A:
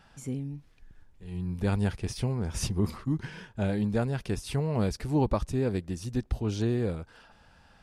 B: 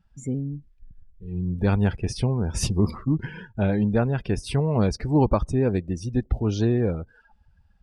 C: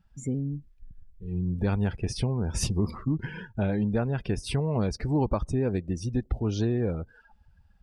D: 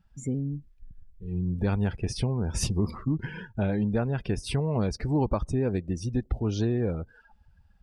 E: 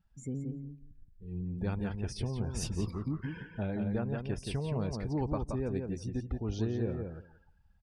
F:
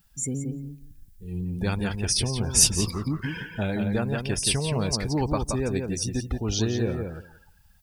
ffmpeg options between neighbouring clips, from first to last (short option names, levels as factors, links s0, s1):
-af "afftdn=nr=25:nf=-46,volume=2"
-af "acompressor=threshold=0.0501:ratio=2"
-af anull
-filter_complex "[0:a]asplit=2[s0][s1];[s1]adelay=174,lowpass=f=2800:p=1,volume=0.596,asplit=2[s2][s3];[s3]adelay=174,lowpass=f=2800:p=1,volume=0.15,asplit=2[s4][s5];[s5]adelay=174,lowpass=f=2800:p=1,volume=0.15[s6];[s0][s2][s4][s6]amix=inputs=4:normalize=0,volume=0.398"
-af "crystalizer=i=7:c=0,volume=2.11"